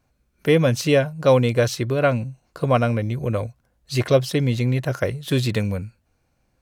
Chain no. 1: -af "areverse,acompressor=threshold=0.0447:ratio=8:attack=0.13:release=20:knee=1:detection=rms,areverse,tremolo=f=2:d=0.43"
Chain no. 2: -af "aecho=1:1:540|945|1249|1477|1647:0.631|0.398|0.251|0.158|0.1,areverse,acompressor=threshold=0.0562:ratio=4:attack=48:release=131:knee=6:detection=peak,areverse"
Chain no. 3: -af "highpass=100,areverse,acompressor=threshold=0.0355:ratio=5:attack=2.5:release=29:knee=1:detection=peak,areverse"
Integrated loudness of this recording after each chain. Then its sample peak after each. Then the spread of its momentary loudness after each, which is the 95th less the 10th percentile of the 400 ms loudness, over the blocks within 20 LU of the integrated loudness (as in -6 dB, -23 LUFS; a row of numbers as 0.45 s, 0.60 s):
-34.5 LUFS, -25.5 LUFS, -32.0 LUFS; -24.5 dBFS, -11.5 dBFS, -19.0 dBFS; 6 LU, 3 LU, 7 LU